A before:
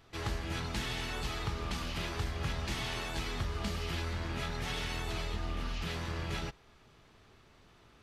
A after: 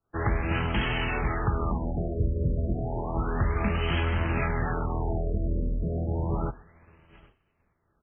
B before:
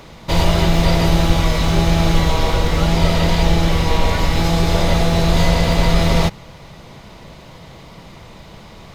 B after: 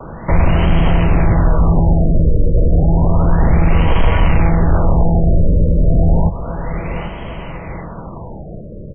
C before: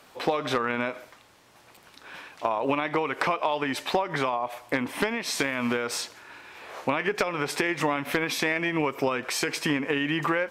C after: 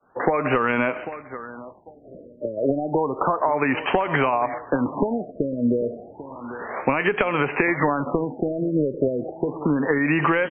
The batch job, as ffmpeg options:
-filter_complex "[0:a]aecho=1:1:793|1586|2379:0.126|0.0441|0.0154,agate=range=-33dB:threshold=-44dB:ratio=3:detection=peak,aeval=exprs='0.944*sin(PI/2*3.16*val(0)/0.944)':c=same,acrossover=split=130[a][b];[b]acompressor=threshold=-12dB:ratio=6[c];[a][c]amix=inputs=2:normalize=0,afftfilt=real='re*lt(b*sr/1024,620*pow(3300/620,0.5+0.5*sin(2*PI*0.31*pts/sr)))':imag='im*lt(b*sr/1024,620*pow(3300/620,0.5+0.5*sin(2*PI*0.31*pts/sr)))':win_size=1024:overlap=0.75,volume=-4dB"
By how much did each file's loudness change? +8.0, +1.5, +4.5 LU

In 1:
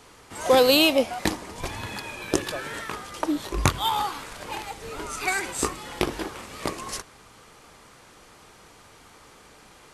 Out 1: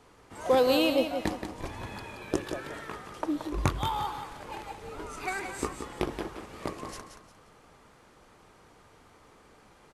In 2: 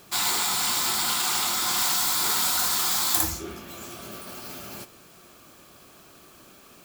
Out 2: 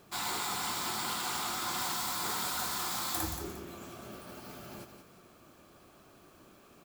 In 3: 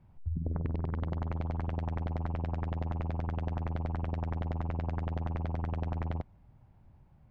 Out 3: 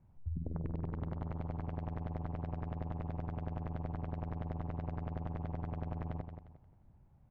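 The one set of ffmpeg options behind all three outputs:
-af "highshelf=f=2k:g=-9,aecho=1:1:176|352|528|704:0.398|0.123|0.0383|0.0119,volume=-4.5dB"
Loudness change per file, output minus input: -6.0, -11.5, -5.5 LU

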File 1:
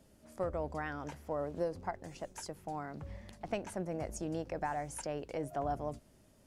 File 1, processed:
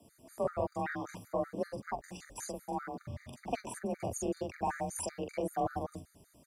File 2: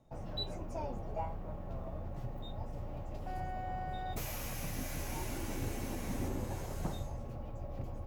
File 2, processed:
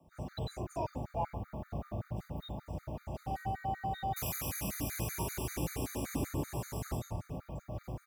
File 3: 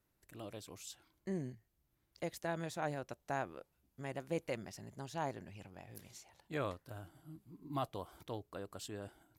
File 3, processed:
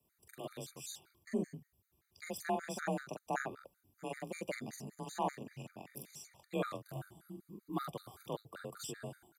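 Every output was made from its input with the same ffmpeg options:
-filter_complex "[0:a]acrossover=split=140|7200[a][b][c];[c]acontrast=32[d];[a][b][d]amix=inputs=3:normalize=0,afreqshift=32,asplit=2[e][f];[f]adelay=44,volume=-2dB[g];[e][g]amix=inputs=2:normalize=0,afftfilt=real='re*gt(sin(2*PI*5.2*pts/sr)*(1-2*mod(floor(b*sr/1024/1200),2)),0)':imag='im*gt(sin(2*PI*5.2*pts/sr)*(1-2*mod(floor(b*sr/1024/1200),2)),0)':win_size=1024:overlap=0.75,volume=2.5dB"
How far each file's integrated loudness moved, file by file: +1.5, +2.5, +1.0 LU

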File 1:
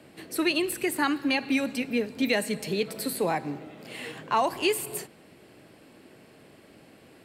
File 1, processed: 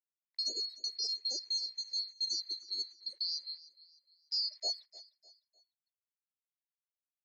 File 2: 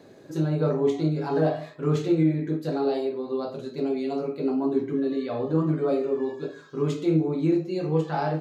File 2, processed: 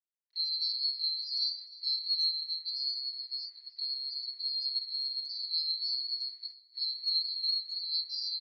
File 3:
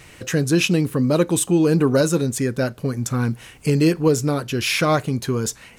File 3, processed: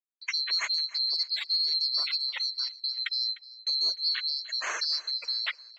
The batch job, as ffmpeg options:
-filter_complex "[0:a]afftfilt=real='real(if(lt(b,736),b+184*(1-2*mod(floor(b/184),2)),b),0)':imag='imag(if(lt(b,736),b+184*(1-2*mod(floor(b/184),2)),b),0)':win_size=2048:overlap=0.75,afftfilt=real='re*gte(hypot(re,im),0.0398)':imag='im*gte(hypot(re,im),0.0398)':win_size=1024:overlap=0.75,agate=range=-34dB:threshold=-33dB:ratio=16:detection=peak,highshelf=f=3.1k:g=-3,asplit=2[a][b];[b]alimiter=limit=-15dB:level=0:latency=1:release=331,volume=0dB[c];[a][c]amix=inputs=2:normalize=0,acrusher=bits=9:mix=0:aa=0.000001,highpass=f=480:w=0.5412,highpass=f=480:w=1.3066,equalizer=f=510:t=q:w=4:g=-7,equalizer=f=760:t=q:w=4:g=-5,equalizer=f=1.3k:t=q:w=4:g=-4,equalizer=f=2k:t=q:w=4:g=9,equalizer=f=2.9k:t=q:w=4:g=-4,equalizer=f=4.4k:t=q:w=4:g=-4,lowpass=f=4.7k:w=0.5412,lowpass=f=4.7k:w=1.3066,asplit=2[d][e];[e]aecho=0:1:302|604|906:0.112|0.0438|0.0171[f];[d][f]amix=inputs=2:normalize=0,volume=-8dB"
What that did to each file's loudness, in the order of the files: -7.5, -5.5, -7.5 LU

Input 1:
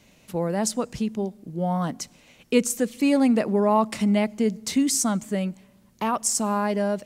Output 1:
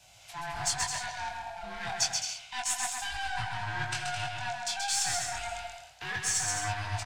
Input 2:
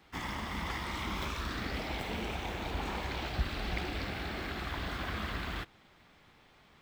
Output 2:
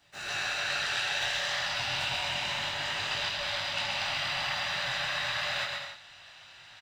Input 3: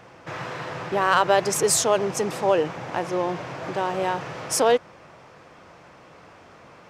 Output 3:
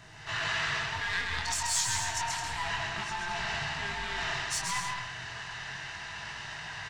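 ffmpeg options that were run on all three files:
-filter_complex "[0:a]afftfilt=real='real(if(lt(b,1008),b+24*(1-2*mod(floor(b/24),2)),b),0)':imag='imag(if(lt(b,1008),b+24*(1-2*mod(floor(b/24),2)),b),0)':win_size=2048:overlap=0.75,aeval=exprs='clip(val(0),-1,0.0422)':c=same,areverse,acompressor=threshold=-36dB:ratio=10,areverse,flanger=delay=19:depth=5:speed=0.29,equalizer=f=125:t=o:w=1:g=11,equalizer=f=250:t=o:w=1:g=-8,equalizer=f=500:t=o:w=1:g=-6,equalizer=f=1k:t=o:w=1:g=-3,equalizer=f=4k:t=o:w=1:g=3,equalizer=f=8k:t=o:w=1:g=8,aecho=1:1:130|214.5|269.4|305.1|328.3:0.631|0.398|0.251|0.158|0.1,acrossover=split=800|6100[a][b][c];[b]dynaudnorm=f=190:g=3:m=13dB[d];[a][d][c]amix=inputs=3:normalize=0"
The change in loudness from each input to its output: -8.0, +7.0, -9.0 LU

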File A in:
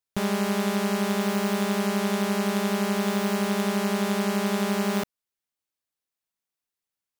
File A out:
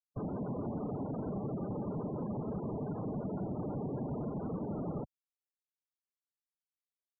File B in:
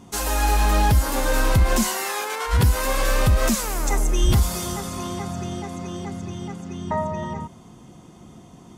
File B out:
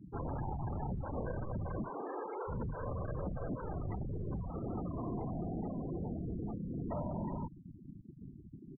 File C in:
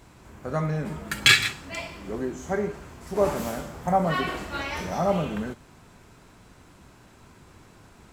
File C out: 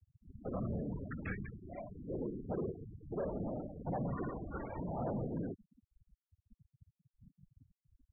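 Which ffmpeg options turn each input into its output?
-filter_complex "[0:a]afftfilt=real='hypot(re,im)*cos(2*PI*random(0))':imag='hypot(re,im)*sin(2*PI*random(1))':win_size=512:overlap=0.75,lowpass=f=2.8k:w=0.5412,lowpass=f=2.8k:w=1.3066,tiltshelf=f=1.1k:g=5.5,acrossover=split=570|1800[a][b][c];[a]acompressor=threshold=-27dB:ratio=4[d];[b]acompressor=threshold=-39dB:ratio=4[e];[c]acompressor=threshold=-54dB:ratio=4[f];[d][e][f]amix=inputs=3:normalize=0,aresample=8000,asoftclip=type=tanh:threshold=-29.5dB,aresample=44100,afftfilt=real='re*gte(hypot(re,im),0.02)':imag='im*gte(hypot(re,im),0.02)':win_size=1024:overlap=0.75,acrossover=split=110[g][h];[g]asoftclip=type=hard:threshold=-37dB[i];[i][h]amix=inputs=2:normalize=0,volume=-3dB"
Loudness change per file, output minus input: -12.5, -17.0, -15.5 LU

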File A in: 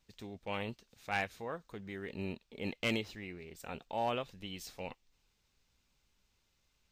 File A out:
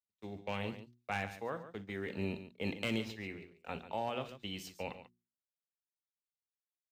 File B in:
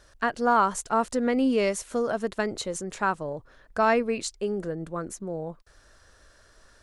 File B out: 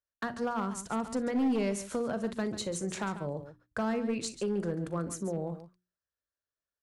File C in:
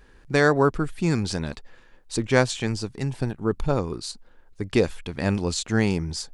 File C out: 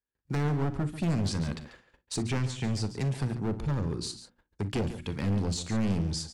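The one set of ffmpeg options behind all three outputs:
-filter_complex "[0:a]agate=range=-43dB:threshold=-46dB:ratio=16:detection=peak,highpass=59,bandreject=f=60:t=h:w=6,bandreject=f=120:t=h:w=6,bandreject=f=180:t=h:w=6,bandreject=f=240:t=h:w=6,bandreject=f=300:t=h:w=6,bandreject=f=360:t=h:w=6,acrossover=split=250[a][b];[b]acompressor=threshold=-37dB:ratio=4[c];[a][c]amix=inputs=2:normalize=0,asoftclip=type=hard:threshold=-27.5dB,asplit=2[d][e];[e]aecho=0:1:41|59|141:0.158|0.126|0.237[f];[d][f]amix=inputs=2:normalize=0,volume=2.5dB"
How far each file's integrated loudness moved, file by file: -1.0, -6.5, -6.5 LU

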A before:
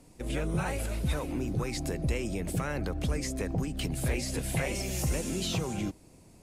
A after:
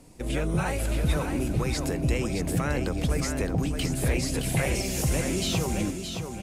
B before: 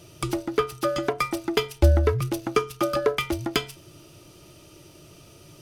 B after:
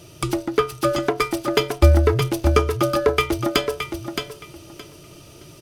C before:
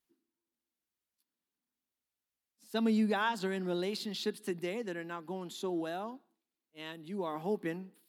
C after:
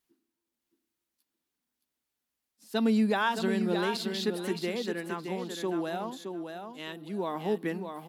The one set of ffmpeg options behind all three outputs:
-af "aecho=1:1:619|1238|1857:0.473|0.0994|0.0209,volume=4dB"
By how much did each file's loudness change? +5.0, +4.5, +4.5 LU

